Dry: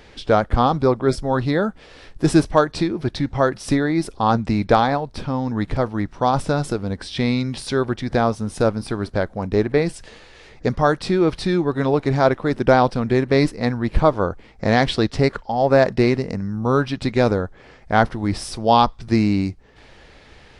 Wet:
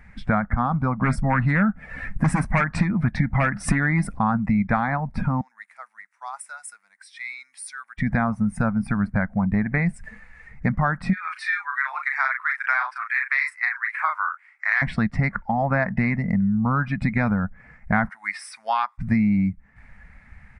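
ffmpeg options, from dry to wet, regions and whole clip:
-filter_complex "[0:a]asettb=1/sr,asplit=3[a][b][c];[a]atrim=end=1.014[d];[b]atrim=start=1.01:end=4.19,asetpts=PTS-STARTPTS,afade=t=in:d=0.004:c=qsin,afade=t=out:st=3.176:d=0.004:c=qsin,acontrast=70,aeval=exprs='0.473*(abs(mod(val(0)/0.473+3,4)-2)-1)':c=same[e];[c]atrim=start=4.186[f];[d][e]acrossfade=d=0.004:c1=hsin:c2=qsin[g];[g][f]acrossfade=d=0.004:c1=qsin:c2=hsin,asettb=1/sr,asplit=3[h][i][j];[h]atrim=end=5.414[k];[i]atrim=start=5.41:end=7.98,asetpts=PTS-STARTPTS,afade=t=in:d=0.004:c=qsin,afade=t=out:st=2.566:d=0.004:c=qsin,highpass=690,aderivative[l];[j]atrim=start=7.976[m];[k][l]acrossfade=d=0.004:c1=hsin:c2=qsin[n];[n][m]acrossfade=d=0.004:c1=qsin:c2=hsin,asettb=1/sr,asplit=3[o][p][q];[o]atrim=end=11.134[r];[p]atrim=start=11.13:end=14.82,asetpts=PTS-STARTPTS,afade=t=in:d=0.004:c=qsin,afade=t=out:st=3.686:d=0.004:c=qsin,highpass=f=1.2k:w=0.5412,highpass=f=1.2k:w=1.3066,asplit=2[s][t];[t]adelay=37,volume=-3.5dB[u];[s][u]amix=inputs=2:normalize=0,atrim=end_sample=162729[v];[q]atrim=start=14.816[w];[r][v]acrossfade=d=0.004:c1=hsin:c2=qsin[x];[x][w]acrossfade=d=0.004:c1=qsin:c2=hsin,asettb=1/sr,asplit=3[y][z][aa];[y]atrim=end=18.094[ab];[z]atrim=start=18.09:end=18.98,asetpts=PTS-STARTPTS,afade=t=in:d=0.004:c=qsin,afade=t=out:st=0.886:d=0.004:c=qsin,highpass=1.3k,acrossover=split=3900[ac][ad];[ad]acompressor=threshold=-45dB:ratio=4:attack=1:release=60[ae];[ac][ae]amix=inputs=2:normalize=0,highshelf=f=3.7k:g=10.5[af];[aa]atrim=start=18.976[ag];[ab][af]acrossfade=d=0.004:c1=hsin:c2=qsin[ah];[ah][ag]acrossfade=d=0.004:c1=qsin:c2=hsin,afftdn=nr=13:nf=-36,firequalizer=gain_entry='entry(110,0);entry(200,9);entry(360,-21);entry(680,-3);entry(1400,4);entry(2100,8);entry(3100,-16);entry(4500,-16);entry(8800,-2);entry(13000,-8)':delay=0.05:min_phase=1,acompressor=threshold=-25dB:ratio=4,volume=5.5dB"

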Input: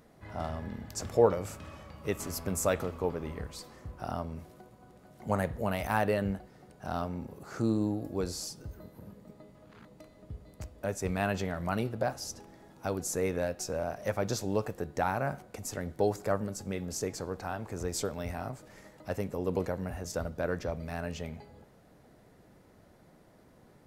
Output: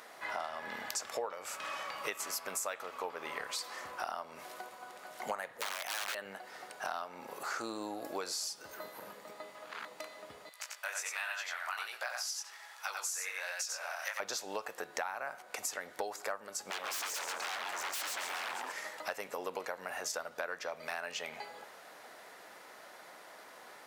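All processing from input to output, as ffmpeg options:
-filter_complex "[0:a]asettb=1/sr,asplit=3[a][b][c];[a]atrim=end=5.524[d];[b]atrim=start=5.52:end=6.15,asetpts=PTS-STARTPTS,afade=t=in:d=0.004:c=qsin,afade=t=out:st=0.626:d=0.004:c=qsin,highpass=60,aeval=exprs='(mod(22.4*val(0)+1,2)-1)/22.4':c=same[e];[c]atrim=start=6.146[f];[d][e]acrossfade=d=0.004:c1=hsin:c2=qsin[g];[g][f]acrossfade=d=0.004:c1=qsin:c2=hsin,asettb=1/sr,asplit=3[h][i][j];[h]atrim=end=10.494[k];[i]atrim=start=10.49:end=14.2,asetpts=PTS-STARTPTS,afade=t=in:d=0.004:c=qsin,afade=t=out:st=3.706:d=0.004:c=qsin,flanger=delay=16.5:depth=5.9:speed=1.3,highpass=1.3k,aecho=1:1:91:0.708,atrim=end_sample=163611[l];[j]atrim=start=14.196[m];[k][l]acrossfade=d=0.004:c1=hsin:c2=qsin[n];[n][m]acrossfade=d=0.004:c1=qsin:c2=hsin,asettb=1/sr,asplit=3[o][p][q];[o]atrim=end=16.704[r];[p]atrim=start=16.7:end=18.72,asetpts=PTS-STARTPTS,afade=t=in:d=0.004:c=qsin,afade=t=out:st=2.016:d=0.004:c=qsin,asplit=5[s][t][u][v][w];[t]adelay=135,afreqshift=130,volume=-6.5dB[x];[u]adelay=270,afreqshift=260,volume=-15.6dB[y];[v]adelay=405,afreqshift=390,volume=-24.7dB[z];[w]adelay=540,afreqshift=520,volume=-33.9dB[aa];[s][x][y][z][aa]amix=inputs=5:normalize=0,atrim=end_sample=89082,aeval=exprs='0.0126*(abs(mod(val(0)/0.0126+3,4)-2)-1)':c=same[ab];[q]atrim=start=18.716[ac];[r][ab]acrossfade=d=0.004:c1=hsin:c2=qsin[ad];[ad][ac]acrossfade=d=0.004:c1=qsin:c2=hsin,highpass=1k,highshelf=f=5.8k:g=-5,acompressor=threshold=-52dB:ratio=8,volume=16.5dB"

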